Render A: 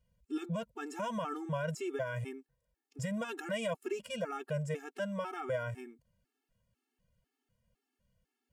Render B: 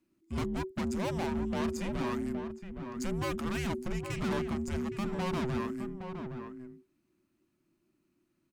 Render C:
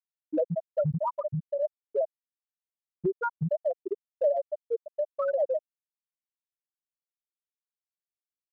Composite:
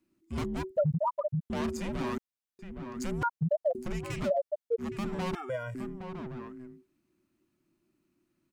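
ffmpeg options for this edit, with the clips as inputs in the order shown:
-filter_complex "[2:a]asplit=4[a][b][c][d];[1:a]asplit=6[e][f][g][h][i][j];[e]atrim=end=0.772[k];[a]atrim=start=0.768:end=1.502[l];[f]atrim=start=1.498:end=2.182[m];[b]atrim=start=2.178:end=2.592[n];[g]atrim=start=2.588:end=3.232[o];[c]atrim=start=3.228:end=3.752[p];[h]atrim=start=3.748:end=4.31[q];[d]atrim=start=4.25:end=4.84[r];[i]atrim=start=4.78:end=5.352[s];[0:a]atrim=start=5.348:end=5.752[t];[j]atrim=start=5.748[u];[k][l]acrossfade=d=0.004:c1=hsin:c2=hsin[v];[v][m]acrossfade=d=0.004:c1=hsin:c2=hsin[w];[w][n]acrossfade=d=0.004:c1=hsin:c2=hsin[x];[x][o]acrossfade=d=0.004:c1=hsin:c2=hsin[y];[y][p]acrossfade=d=0.004:c1=hsin:c2=hsin[z];[z][q]acrossfade=d=0.004:c1=hsin:c2=hsin[aa];[aa][r]acrossfade=d=0.06:c1=tri:c2=tri[ab];[ab][s]acrossfade=d=0.06:c1=tri:c2=tri[ac];[ac][t]acrossfade=d=0.004:c1=hsin:c2=hsin[ad];[ad][u]acrossfade=d=0.004:c1=hsin:c2=hsin"

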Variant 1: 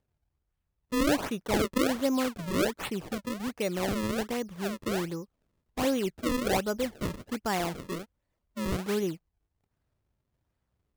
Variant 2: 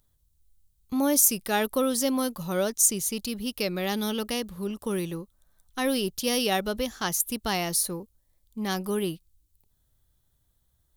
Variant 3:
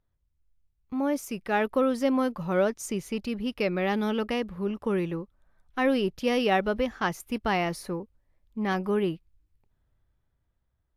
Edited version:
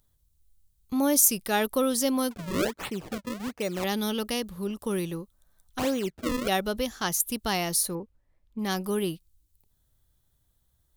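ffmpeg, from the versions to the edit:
-filter_complex "[0:a]asplit=2[a][b];[1:a]asplit=4[c][d][e][f];[c]atrim=end=2.312[g];[a]atrim=start=2.308:end=3.842[h];[d]atrim=start=3.838:end=5.792[i];[b]atrim=start=5.788:end=6.482[j];[e]atrim=start=6.478:end=7.952[k];[2:a]atrim=start=7.948:end=8.592[l];[f]atrim=start=8.588[m];[g][h]acrossfade=d=0.004:c1=hsin:c2=hsin[n];[n][i]acrossfade=d=0.004:c1=hsin:c2=hsin[o];[o][j]acrossfade=d=0.004:c1=hsin:c2=hsin[p];[p][k]acrossfade=d=0.004:c1=hsin:c2=hsin[q];[q][l]acrossfade=d=0.004:c1=hsin:c2=hsin[r];[r][m]acrossfade=d=0.004:c1=hsin:c2=hsin"

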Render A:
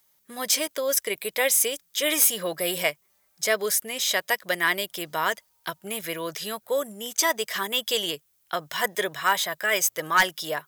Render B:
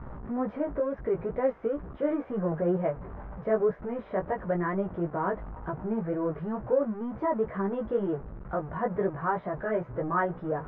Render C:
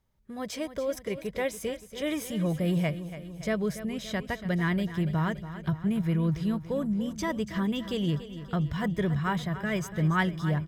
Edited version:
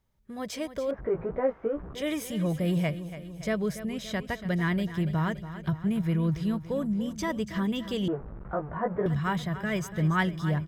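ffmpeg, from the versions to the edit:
-filter_complex "[1:a]asplit=2[a][b];[2:a]asplit=3[c][d][e];[c]atrim=end=0.912[f];[a]atrim=start=0.908:end=1.952[g];[d]atrim=start=1.948:end=8.082[h];[b]atrim=start=8.078:end=9.062[i];[e]atrim=start=9.058[j];[f][g]acrossfade=d=0.004:c1=hsin:c2=hsin[k];[k][h]acrossfade=d=0.004:c1=hsin:c2=hsin[l];[l][i]acrossfade=d=0.004:c1=hsin:c2=hsin[m];[m][j]acrossfade=d=0.004:c1=hsin:c2=hsin"

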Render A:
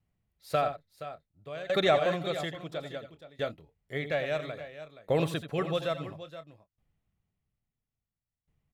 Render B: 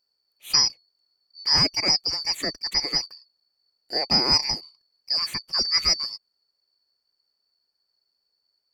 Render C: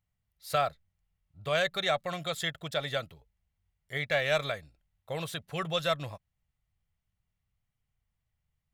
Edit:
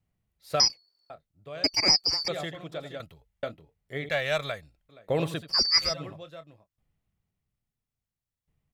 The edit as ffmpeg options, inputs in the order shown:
-filter_complex "[1:a]asplit=3[a][b][c];[2:a]asplit=2[d][e];[0:a]asplit=6[f][g][h][i][j][k];[f]atrim=end=0.602[l];[a]atrim=start=0.598:end=1.102[m];[g]atrim=start=1.098:end=1.642[n];[b]atrim=start=1.638:end=2.282[o];[h]atrim=start=2.278:end=3.002[p];[d]atrim=start=2.998:end=3.432[q];[i]atrim=start=3.428:end=4.092[r];[e]atrim=start=4.088:end=4.892[s];[j]atrim=start=4.888:end=5.55[t];[c]atrim=start=5.39:end=5.95[u];[k]atrim=start=5.79[v];[l][m]acrossfade=d=0.004:c1=hsin:c2=hsin[w];[w][n]acrossfade=d=0.004:c1=hsin:c2=hsin[x];[x][o]acrossfade=d=0.004:c1=hsin:c2=hsin[y];[y][p]acrossfade=d=0.004:c1=hsin:c2=hsin[z];[z][q]acrossfade=d=0.004:c1=hsin:c2=hsin[aa];[aa][r]acrossfade=d=0.004:c1=hsin:c2=hsin[ab];[ab][s]acrossfade=d=0.004:c1=hsin:c2=hsin[ac];[ac][t]acrossfade=d=0.004:c1=hsin:c2=hsin[ad];[ad][u]acrossfade=d=0.16:c1=tri:c2=tri[ae];[ae][v]acrossfade=d=0.16:c1=tri:c2=tri"

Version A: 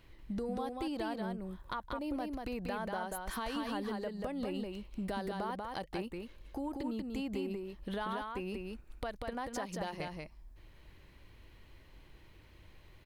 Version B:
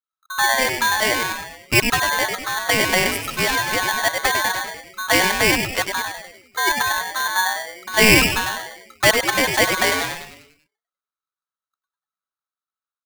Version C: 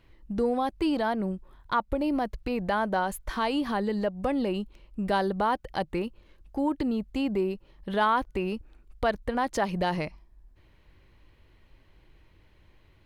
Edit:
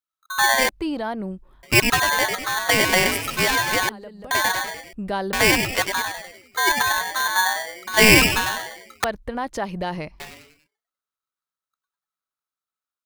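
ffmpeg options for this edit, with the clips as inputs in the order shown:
-filter_complex "[2:a]asplit=3[a][b][c];[1:a]asplit=5[d][e][f][g][h];[d]atrim=end=0.692[i];[a]atrim=start=0.688:end=1.632[j];[e]atrim=start=1.628:end=3.892[k];[0:a]atrim=start=3.888:end=4.312[l];[f]atrim=start=4.308:end=4.932[m];[b]atrim=start=4.928:end=5.332[n];[g]atrim=start=5.328:end=9.042[o];[c]atrim=start=9.038:end=10.202[p];[h]atrim=start=10.198[q];[i][j]acrossfade=d=0.004:c1=hsin:c2=hsin[r];[r][k]acrossfade=d=0.004:c1=hsin:c2=hsin[s];[s][l]acrossfade=d=0.004:c1=hsin:c2=hsin[t];[t][m]acrossfade=d=0.004:c1=hsin:c2=hsin[u];[u][n]acrossfade=d=0.004:c1=hsin:c2=hsin[v];[v][o]acrossfade=d=0.004:c1=hsin:c2=hsin[w];[w][p]acrossfade=d=0.004:c1=hsin:c2=hsin[x];[x][q]acrossfade=d=0.004:c1=hsin:c2=hsin"

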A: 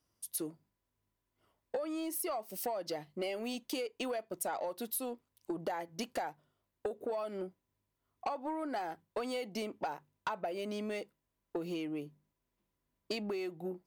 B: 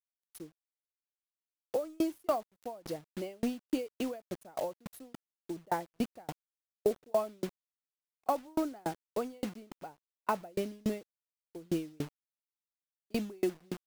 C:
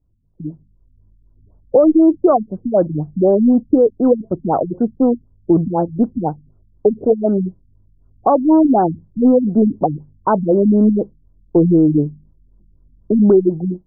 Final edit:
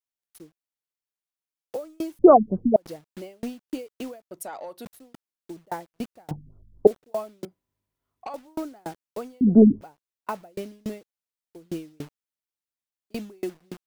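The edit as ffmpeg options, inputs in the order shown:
-filter_complex "[2:a]asplit=3[a][b][c];[0:a]asplit=2[d][e];[1:a]asplit=6[f][g][h][i][j][k];[f]atrim=end=2.192[l];[a]atrim=start=2.188:end=2.762[m];[g]atrim=start=2.758:end=4.312[n];[d]atrim=start=4.308:end=4.852[o];[h]atrim=start=4.848:end=6.312[p];[b]atrim=start=6.308:end=6.872[q];[i]atrim=start=6.868:end=7.452[r];[e]atrim=start=7.448:end=8.342[s];[j]atrim=start=8.338:end=9.412[t];[c]atrim=start=9.408:end=9.812[u];[k]atrim=start=9.808[v];[l][m]acrossfade=d=0.004:c1=hsin:c2=hsin[w];[w][n]acrossfade=d=0.004:c1=hsin:c2=hsin[x];[x][o]acrossfade=d=0.004:c1=hsin:c2=hsin[y];[y][p]acrossfade=d=0.004:c1=hsin:c2=hsin[z];[z][q]acrossfade=d=0.004:c1=hsin:c2=hsin[aa];[aa][r]acrossfade=d=0.004:c1=hsin:c2=hsin[ab];[ab][s]acrossfade=d=0.004:c1=hsin:c2=hsin[ac];[ac][t]acrossfade=d=0.004:c1=hsin:c2=hsin[ad];[ad][u]acrossfade=d=0.004:c1=hsin:c2=hsin[ae];[ae][v]acrossfade=d=0.004:c1=hsin:c2=hsin"

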